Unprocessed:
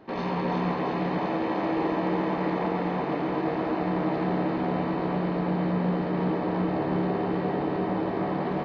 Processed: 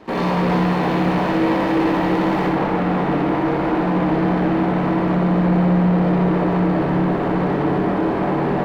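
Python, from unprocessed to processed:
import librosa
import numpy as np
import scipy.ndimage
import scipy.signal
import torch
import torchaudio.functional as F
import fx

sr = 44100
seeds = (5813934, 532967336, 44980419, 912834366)

y = fx.leveller(x, sr, passes=3)
y = fx.high_shelf(y, sr, hz=4100.0, db=fx.steps((0.0, -2.0), (2.48, -11.5)))
y = fx.room_flutter(y, sr, wall_m=10.6, rt60_s=0.7)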